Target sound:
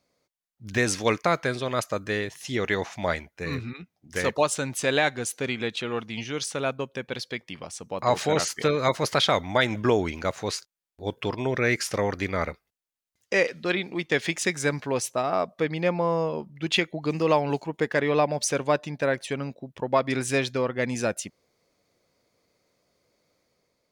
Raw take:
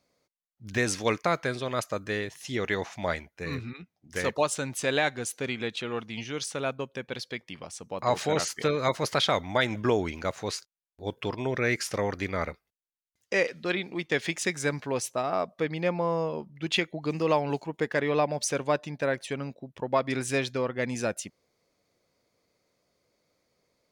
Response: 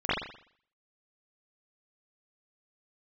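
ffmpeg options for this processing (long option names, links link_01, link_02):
-af "dynaudnorm=framelen=140:gausssize=7:maxgain=3dB"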